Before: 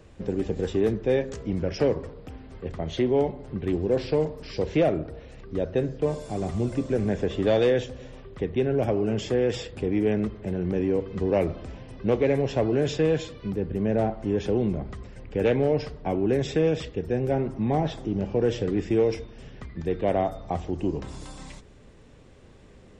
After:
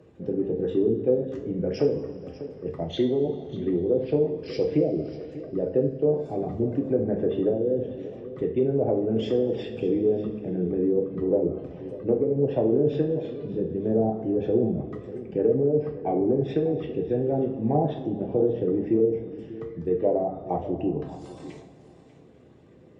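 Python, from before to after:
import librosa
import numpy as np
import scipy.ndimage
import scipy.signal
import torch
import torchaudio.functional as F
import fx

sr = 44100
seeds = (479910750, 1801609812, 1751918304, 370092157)

y = fx.envelope_sharpen(x, sr, power=1.5)
y = scipy.signal.sosfilt(scipy.signal.butter(2, 140.0, 'highpass', fs=sr, output='sos'), y)
y = fx.env_lowpass_down(y, sr, base_hz=330.0, full_db=-17.5)
y = y + 10.0 ** (-15.5 / 20.0) * np.pad(y, (int(593 * sr / 1000.0), 0))[:len(y)]
y = fx.rev_double_slope(y, sr, seeds[0], early_s=0.42, late_s=3.5, knee_db=-19, drr_db=1.0)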